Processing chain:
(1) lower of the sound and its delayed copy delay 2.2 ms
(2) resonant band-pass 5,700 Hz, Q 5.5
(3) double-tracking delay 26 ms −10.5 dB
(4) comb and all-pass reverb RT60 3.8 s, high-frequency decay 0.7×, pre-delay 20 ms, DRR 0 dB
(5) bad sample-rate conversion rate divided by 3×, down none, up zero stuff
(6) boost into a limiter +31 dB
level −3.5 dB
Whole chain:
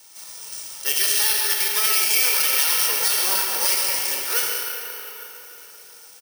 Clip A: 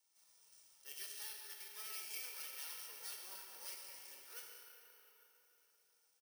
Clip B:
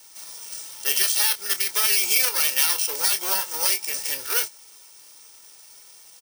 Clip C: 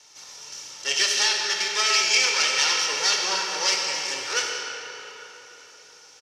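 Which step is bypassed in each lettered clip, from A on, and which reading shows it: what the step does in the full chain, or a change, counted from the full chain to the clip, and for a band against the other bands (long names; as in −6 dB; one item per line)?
6, change in crest factor +5.5 dB
4, change in momentary loudness spread −2 LU
5, 8 kHz band −5.0 dB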